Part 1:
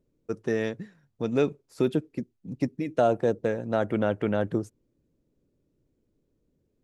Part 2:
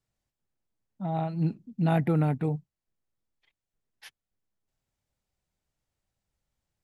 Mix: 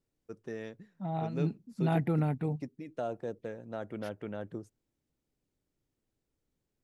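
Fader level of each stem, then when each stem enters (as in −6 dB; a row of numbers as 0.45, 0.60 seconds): −13.5, −4.5 decibels; 0.00, 0.00 seconds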